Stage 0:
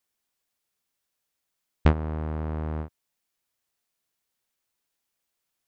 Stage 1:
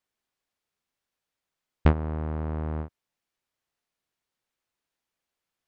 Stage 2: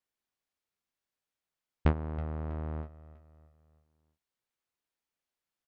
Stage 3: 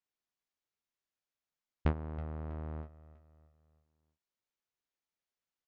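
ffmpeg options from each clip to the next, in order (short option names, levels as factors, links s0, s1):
-af "lowpass=f=3300:p=1"
-af "aecho=1:1:323|646|969|1292:0.133|0.0587|0.0258|0.0114,volume=0.501"
-af "aresample=16000,aresample=44100,volume=0.596"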